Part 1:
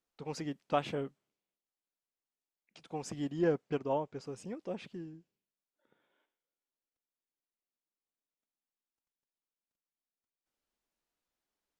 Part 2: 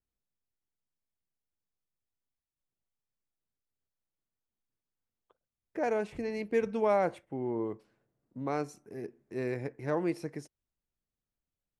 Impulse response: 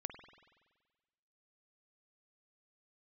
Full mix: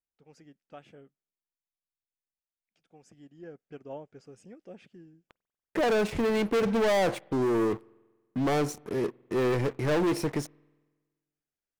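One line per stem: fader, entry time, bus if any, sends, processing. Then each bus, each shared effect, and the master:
3.52 s -16 dB -> 3.91 s -7 dB, 0.00 s, no send, graphic EQ with 31 bands 1 kHz -10 dB, 1.6 kHz +3 dB, 4 kHz -7 dB
-5.0 dB, 0.00 s, send -17.5 dB, waveshaping leveller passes 5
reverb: on, RT60 1.4 s, pre-delay 47 ms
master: none

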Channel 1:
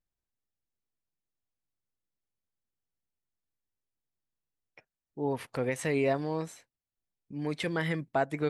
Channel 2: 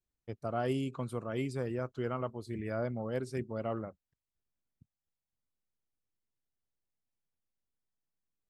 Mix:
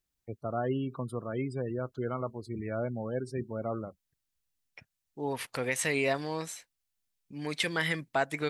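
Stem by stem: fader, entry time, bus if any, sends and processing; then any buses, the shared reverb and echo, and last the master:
+2.5 dB, 0.00 s, no send, tilt shelf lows -6.5 dB, about 1.3 kHz
+1.5 dB, 0.00 s, no send, spectral gate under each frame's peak -25 dB strong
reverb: none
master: none

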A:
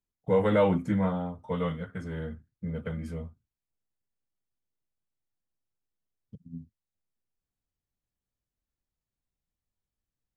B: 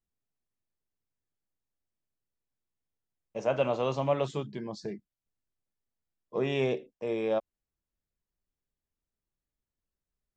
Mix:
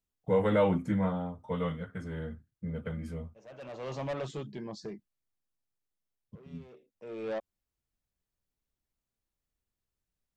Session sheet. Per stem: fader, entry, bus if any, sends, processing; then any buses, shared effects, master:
-2.5 dB, 0.00 s, no send, none
-1.5 dB, 0.00 s, no send, saturation -29 dBFS, distortion -9 dB; auto duck -21 dB, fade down 1.50 s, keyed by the first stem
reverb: none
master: none

